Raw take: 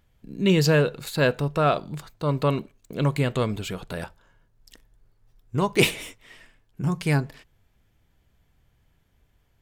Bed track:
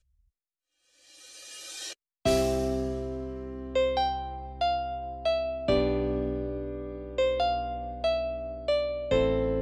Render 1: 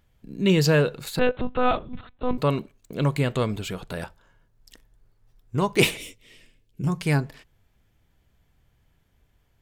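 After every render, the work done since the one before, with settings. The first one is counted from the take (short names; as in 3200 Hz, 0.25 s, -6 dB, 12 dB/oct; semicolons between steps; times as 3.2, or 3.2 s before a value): 1.19–2.38 monotone LPC vocoder at 8 kHz 250 Hz; 5.97–6.87 band shelf 1100 Hz -12 dB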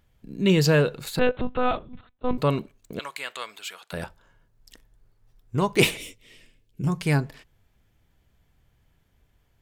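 1.47–2.24 fade out, to -17 dB; 2.99–3.93 HPF 1200 Hz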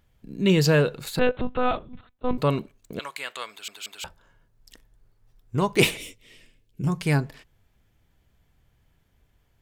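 3.5 stutter in place 0.18 s, 3 plays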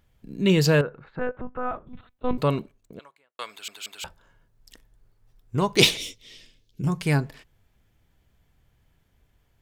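0.81–1.87 ladder low-pass 1900 Hz, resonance 35%; 2.4–3.39 studio fade out; 5.77–6.81 band shelf 4600 Hz +10 dB 1.2 oct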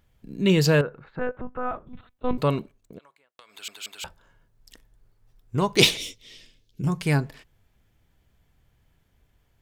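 2.98–3.56 compressor 5:1, threshold -49 dBFS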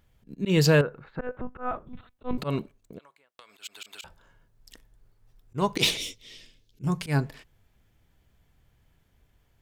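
auto swell 0.118 s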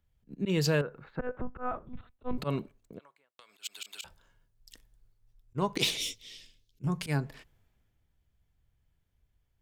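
compressor 3:1, threshold -30 dBFS, peak gain reduction 11 dB; three-band expander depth 40%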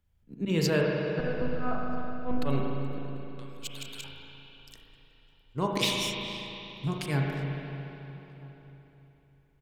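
outdoor echo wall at 220 m, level -23 dB; spring tank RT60 3.3 s, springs 36/59 ms, chirp 75 ms, DRR -1 dB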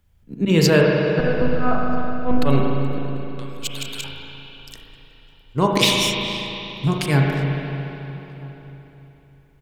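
gain +11 dB; limiter -3 dBFS, peak gain reduction 1 dB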